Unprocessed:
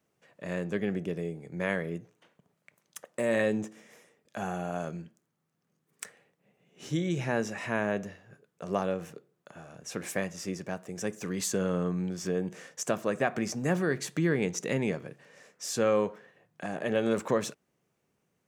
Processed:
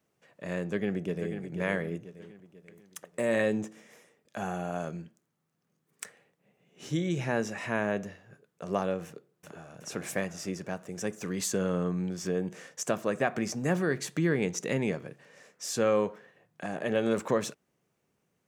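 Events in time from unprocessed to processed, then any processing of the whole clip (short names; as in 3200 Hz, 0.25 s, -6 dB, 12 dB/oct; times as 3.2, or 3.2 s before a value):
0.59–1.33 echo throw 0.49 s, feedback 45%, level -8 dB
9.06–9.78 echo throw 0.37 s, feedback 60%, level -3 dB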